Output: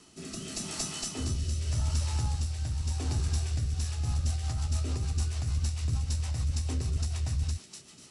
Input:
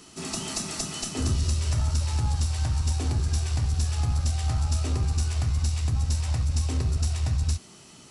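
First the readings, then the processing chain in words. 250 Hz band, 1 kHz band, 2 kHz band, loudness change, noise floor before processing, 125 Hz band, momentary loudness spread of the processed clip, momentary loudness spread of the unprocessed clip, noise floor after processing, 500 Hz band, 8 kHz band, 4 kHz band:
−5.0 dB, −7.0 dB, −5.5 dB, −5.0 dB, −50 dBFS, −5.0 dB, 5 LU, 4 LU, −52 dBFS, −5.5 dB, −4.0 dB, −4.5 dB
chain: delay with a high-pass on its return 245 ms, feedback 56%, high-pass 1,900 Hz, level −5.5 dB
rotating-speaker cabinet horn 0.85 Hz, later 6.7 Hz, at 0:03.47
level −3.5 dB

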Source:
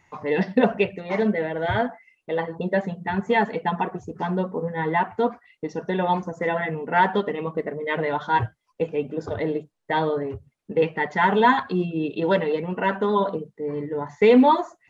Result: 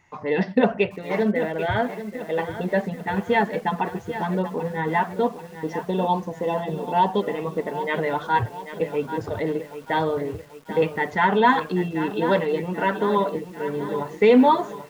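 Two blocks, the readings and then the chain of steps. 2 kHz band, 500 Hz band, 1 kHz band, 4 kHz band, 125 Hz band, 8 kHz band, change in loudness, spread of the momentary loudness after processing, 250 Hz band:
−0.5 dB, +0.5 dB, +0.5 dB, +0.5 dB, +0.5 dB, can't be measured, 0.0 dB, 10 LU, 0.0 dB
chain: gain on a spectral selection 0:05.22–0:07.23, 1,200–2,600 Hz −15 dB
feedback echo at a low word length 788 ms, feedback 55%, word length 7 bits, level −11.5 dB

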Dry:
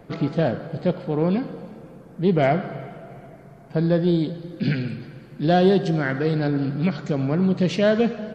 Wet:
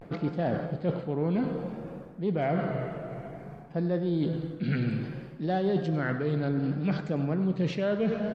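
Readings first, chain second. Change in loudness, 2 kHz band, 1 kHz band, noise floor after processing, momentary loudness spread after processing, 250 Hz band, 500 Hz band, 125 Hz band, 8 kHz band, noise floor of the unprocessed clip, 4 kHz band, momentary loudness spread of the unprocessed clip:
−7.5 dB, −7.5 dB, −7.5 dB, −45 dBFS, 10 LU, −6.5 dB, −8.0 dB, −6.0 dB, can't be measured, −46 dBFS, −11.0 dB, 17 LU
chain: pitch vibrato 0.6 Hz 86 cents
reversed playback
downward compressor 6 to 1, threshold −28 dBFS, peak gain reduction 14.5 dB
reversed playback
high-shelf EQ 4,600 Hz −10.5 dB
slap from a distant wall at 17 metres, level −15 dB
level +2.5 dB

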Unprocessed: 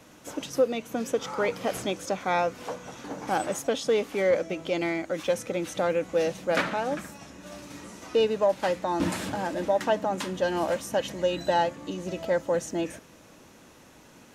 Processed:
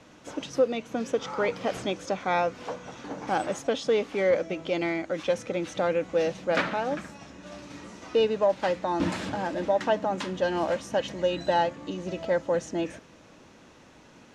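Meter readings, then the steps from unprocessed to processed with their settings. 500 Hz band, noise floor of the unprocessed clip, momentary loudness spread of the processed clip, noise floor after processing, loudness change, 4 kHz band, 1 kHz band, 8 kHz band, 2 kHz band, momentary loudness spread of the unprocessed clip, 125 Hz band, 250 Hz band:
0.0 dB, −53 dBFS, 13 LU, −53 dBFS, 0.0 dB, −0.5 dB, 0.0 dB, −5.5 dB, 0.0 dB, 13 LU, 0.0 dB, 0.0 dB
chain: low-pass filter 5,700 Hz 12 dB per octave

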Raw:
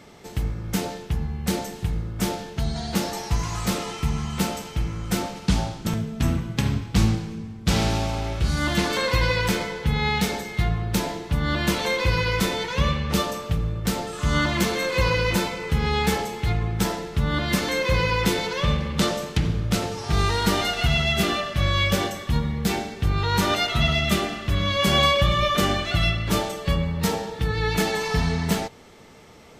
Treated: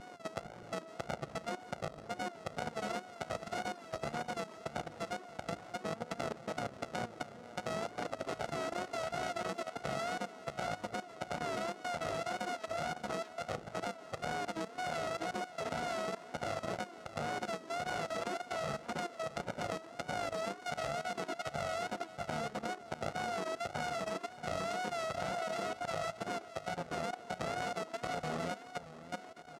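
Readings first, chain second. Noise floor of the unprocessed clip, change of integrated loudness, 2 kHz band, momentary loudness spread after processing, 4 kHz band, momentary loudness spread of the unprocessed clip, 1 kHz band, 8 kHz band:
−40 dBFS, −15.5 dB, −15.0 dB, 5 LU, −19.5 dB, 7 LU, −10.0 dB, −16.5 dB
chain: samples sorted by size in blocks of 64 samples
high-pass filter 280 Hz 12 dB per octave
mains-hum notches 60/120/180/240/300/360/420/480/540 Hz
reverb reduction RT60 1.2 s
parametric band 3,000 Hz −6 dB 1.6 octaves
downward compressor 10 to 1, threshold −35 dBFS, peak gain reduction 16.5 dB
tape wow and flutter 110 cents
high-frequency loss of the air 83 metres
repeating echo 627 ms, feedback 17%, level −4.5 dB
output level in coarse steps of 14 dB
level +5 dB

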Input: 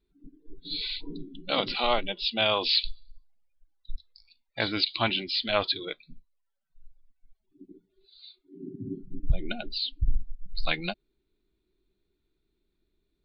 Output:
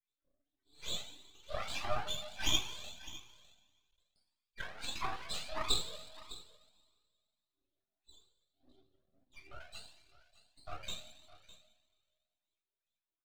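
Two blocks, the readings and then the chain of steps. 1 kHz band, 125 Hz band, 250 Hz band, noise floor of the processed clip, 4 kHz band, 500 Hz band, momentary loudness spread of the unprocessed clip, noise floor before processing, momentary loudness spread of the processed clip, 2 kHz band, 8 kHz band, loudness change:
−10.5 dB, −13.5 dB, −17.5 dB, below −85 dBFS, −10.5 dB, −15.0 dB, 17 LU, −78 dBFS, 19 LU, −12.5 dB, can't be measured, −10.5 dB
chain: high-shelf EQ 4,000 Hz +7 dB
LFO wah 2.5 Hz 610–3,700 Hz, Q 11
on a send: single-tap delay 606 ms −17 dB
on the sum: coupled-rooms reverb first 0.5 s, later 1.9 s, from −16 dB, DRR −6.5 dB
half-wave rectification
flanger whose copies keep moving one way rising 1.6 Hz
level +1 dB

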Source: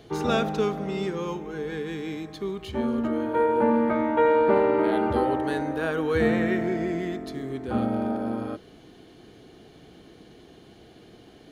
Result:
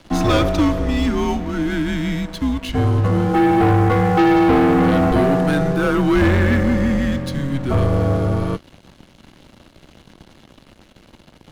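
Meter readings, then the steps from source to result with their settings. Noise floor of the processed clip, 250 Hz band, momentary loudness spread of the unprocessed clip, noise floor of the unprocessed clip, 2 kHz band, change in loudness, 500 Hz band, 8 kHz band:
−51 dBFS, +9.5 dB, 12 LU, −51 dBFS, +8.5 dB, +8.0 dB, +4.0 dB, can't be measured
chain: leveller curve on the samples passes 3
frequency shifter −130 Hz

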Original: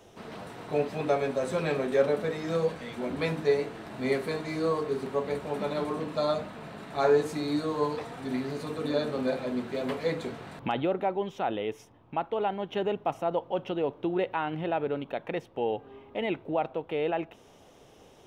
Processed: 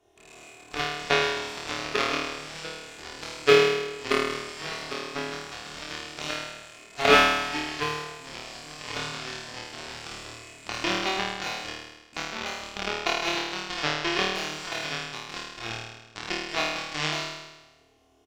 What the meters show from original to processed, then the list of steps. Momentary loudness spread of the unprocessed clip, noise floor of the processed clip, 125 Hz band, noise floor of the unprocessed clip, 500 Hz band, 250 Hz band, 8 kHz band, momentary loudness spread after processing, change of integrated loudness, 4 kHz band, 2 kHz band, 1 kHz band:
9 LU, −54 dBFS, −3.5 dB, −56 dBFS, −2.0 dB, −4.0 dB, can't be measured, 16 LU, +3.0 dB, +14.0 dB, +11.0 dB, +2.5 dB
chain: loose part that buzzes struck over −46 dBFS, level −20 dBFS
comb filter 2.8 ms, depth 73%
harmonic generator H 3 −9 dB, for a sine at −9.5 dBFS
flutter between parallel walls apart 4.5 metres, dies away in 1.1 s
level +8 dB

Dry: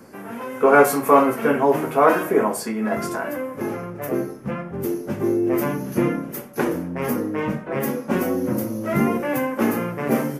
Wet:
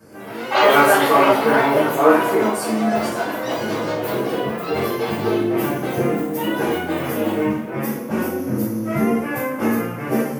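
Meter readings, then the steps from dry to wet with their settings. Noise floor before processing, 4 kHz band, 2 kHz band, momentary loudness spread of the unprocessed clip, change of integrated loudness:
−36 dBFS, +12.5 dB, +5.0 dB, 12 LU, +2.5 dB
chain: delay with pitch and tempo change per echo 97 ms, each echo +6 semitones, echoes 3
coupled-rooms reverb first 0.45 s, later 2.6 s, from −19 dB, DRR −9.5 dB
level −9.5 dB

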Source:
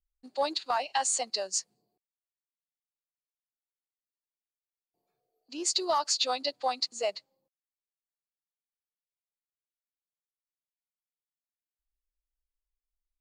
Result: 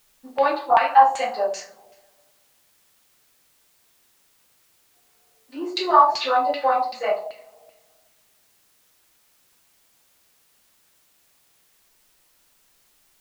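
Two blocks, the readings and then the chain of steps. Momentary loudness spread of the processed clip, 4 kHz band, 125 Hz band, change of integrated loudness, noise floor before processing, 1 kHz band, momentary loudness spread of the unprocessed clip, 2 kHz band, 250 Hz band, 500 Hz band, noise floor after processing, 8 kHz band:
15 LU, −1.5 dB, can't be measured, +9.5 dB, below −85 dBFS, +14.5 dB, 7 LU, +11.0 dB, +8.5 dB, +10.0 dB, −62 dBFS, below −10 dB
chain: coupled-rooms reverb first 0.42 s, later 1.6 s, from −21 dB, DRR −9 dB
auto-filter low-pass saw down 2.6 Hz 710–2,700 Hz
background noise white −62 dBFS

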